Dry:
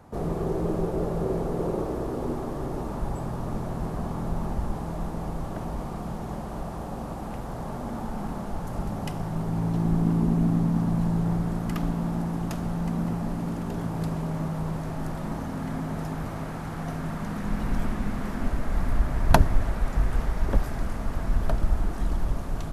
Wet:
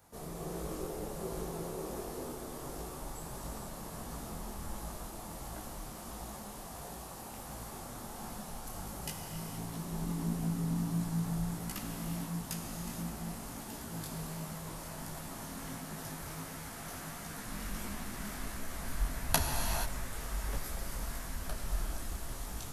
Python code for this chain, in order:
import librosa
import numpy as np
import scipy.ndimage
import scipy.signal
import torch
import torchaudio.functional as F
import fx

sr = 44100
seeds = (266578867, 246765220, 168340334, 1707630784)

y = F.preemphasis(torch.from_numpy(x), 0.9).numpy()
y = fx.rev_gated(y, sr, seeds[0], gate_ms=500, shape='flat', drr_db=1.0)
y = fx.detune_double(y, sr, cents=50)
y = y * librosa.db_to_amplitude(7.5)